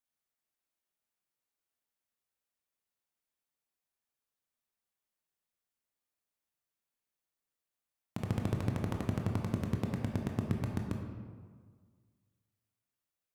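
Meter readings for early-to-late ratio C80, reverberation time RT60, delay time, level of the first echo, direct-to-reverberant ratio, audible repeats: 5.0 dB, 1.7 s, no echo, no echo, 1.5 dB, no echo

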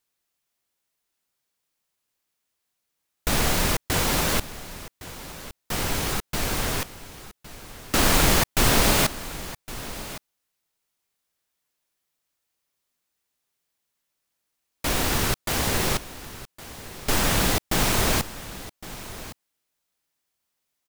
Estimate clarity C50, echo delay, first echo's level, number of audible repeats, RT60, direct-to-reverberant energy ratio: no reverb, 1112 ms, -16.0 dB, 1, no reverb, no reverb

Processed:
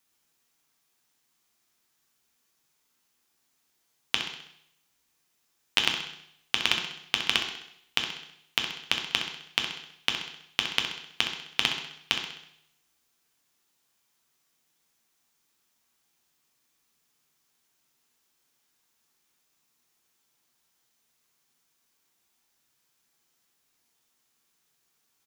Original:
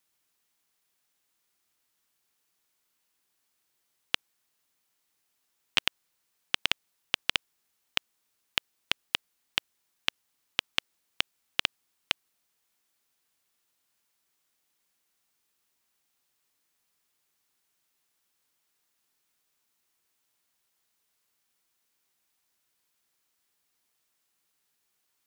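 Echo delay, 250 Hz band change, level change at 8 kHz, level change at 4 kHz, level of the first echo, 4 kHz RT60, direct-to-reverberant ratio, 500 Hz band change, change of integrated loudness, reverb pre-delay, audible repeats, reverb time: 65 ms, +6.5 dB, +5.0 dB, +4.0 dB, -9.0 dB, 0.70 s, 1.5 dB, +4.5 dB, +3.5 dB, 3 ms, 2, 0.75 s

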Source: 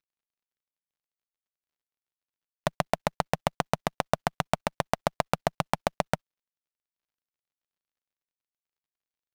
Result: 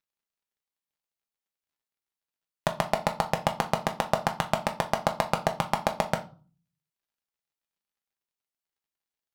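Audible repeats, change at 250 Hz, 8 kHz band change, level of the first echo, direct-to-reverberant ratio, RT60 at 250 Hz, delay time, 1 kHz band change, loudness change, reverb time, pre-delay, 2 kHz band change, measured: no echo, +1.5 dB, +1.5 dB, no echo, 3.5 dB, 0.60 s, no echo, +2.0 dB, +2.0 dB, 0.40 s, 5 ms, +1.5 dB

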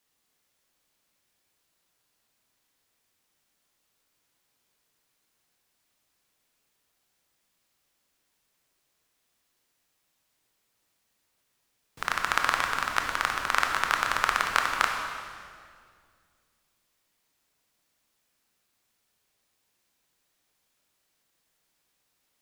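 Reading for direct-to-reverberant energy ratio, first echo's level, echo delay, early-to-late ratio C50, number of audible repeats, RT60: 1.5 dB, no echo, no echo, 3.0 dB, no echo, 2.1 s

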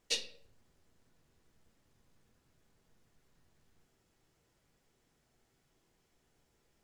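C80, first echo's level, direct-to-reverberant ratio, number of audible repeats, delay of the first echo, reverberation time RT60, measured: 15.0 dB, no echo, 4.0 dB, no echo, no echo, 0.55 s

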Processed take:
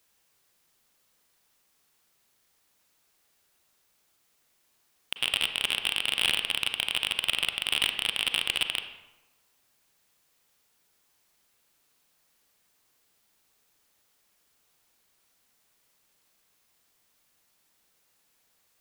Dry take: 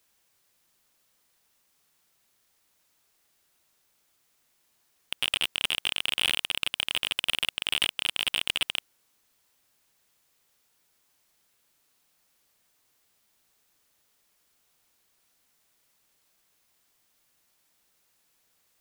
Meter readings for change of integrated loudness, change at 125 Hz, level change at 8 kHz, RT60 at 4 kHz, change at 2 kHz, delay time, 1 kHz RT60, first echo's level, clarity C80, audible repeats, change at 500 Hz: +0.5 dB, +0.5 dB, 0.0 dB, 0.65 s, +0.5 dB, no echo, 1.1 s, no echo, 10.5 dB, no echo, +1.0 dB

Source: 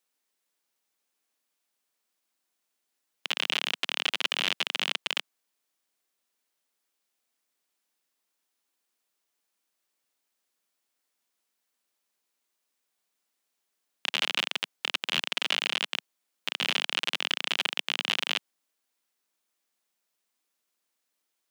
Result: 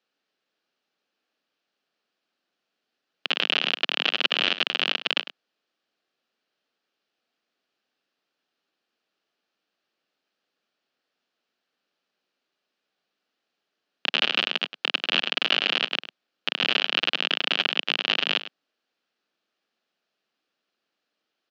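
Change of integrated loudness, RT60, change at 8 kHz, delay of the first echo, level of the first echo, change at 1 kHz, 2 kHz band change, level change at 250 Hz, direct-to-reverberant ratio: +5.0 dB, no reverb, no reading, 102 ms, -14.0 dB, +4.5 dB, +5.0 dB, +8.0 dB, no reverb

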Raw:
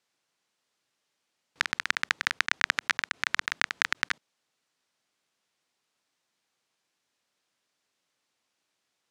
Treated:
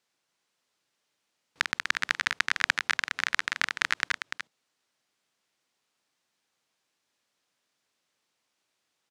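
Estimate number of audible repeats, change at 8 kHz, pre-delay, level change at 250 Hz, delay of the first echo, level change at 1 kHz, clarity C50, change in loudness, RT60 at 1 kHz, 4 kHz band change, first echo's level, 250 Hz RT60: 1, +0.5 dB, no reverb, +0.5 dB, 293 ms, +0.5 dB, no reverb, +0.5 dB, no reverb, +0.5 dB, -7.5 dB, no reverb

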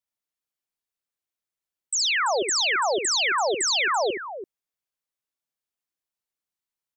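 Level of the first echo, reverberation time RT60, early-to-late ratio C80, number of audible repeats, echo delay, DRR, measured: -7.5 dB, no reverb, no reverb, 2, 69 ms, no reverb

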